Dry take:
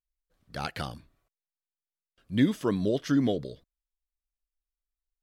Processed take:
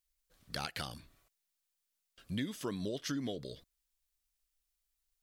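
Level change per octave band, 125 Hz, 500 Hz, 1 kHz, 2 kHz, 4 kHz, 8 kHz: -11.0, -11.5, -8.0, -6.0, -2.0, +1.0 dB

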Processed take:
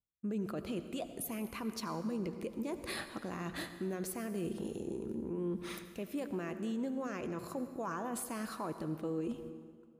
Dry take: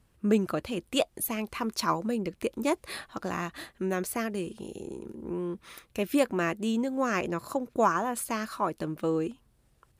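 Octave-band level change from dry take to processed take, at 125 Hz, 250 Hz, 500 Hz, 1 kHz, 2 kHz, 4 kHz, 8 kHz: -5.5, -7.0, -9.5, -13.0, -11.0, -10.0, -8.0 dB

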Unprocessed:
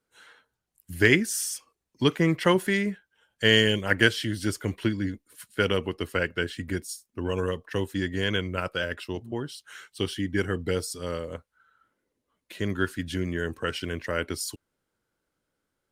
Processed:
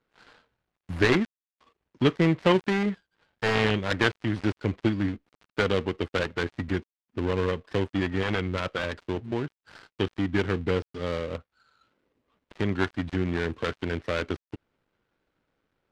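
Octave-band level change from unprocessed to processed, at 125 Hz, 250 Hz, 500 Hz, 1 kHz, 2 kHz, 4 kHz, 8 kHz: +1.0, +1.0, +0.5, +2.5, -3.5, -6.0, -14.5 dB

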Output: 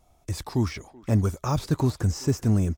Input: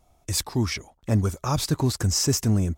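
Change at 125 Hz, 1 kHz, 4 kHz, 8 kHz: 0.0, -1.5, -11.0, -12.0 dB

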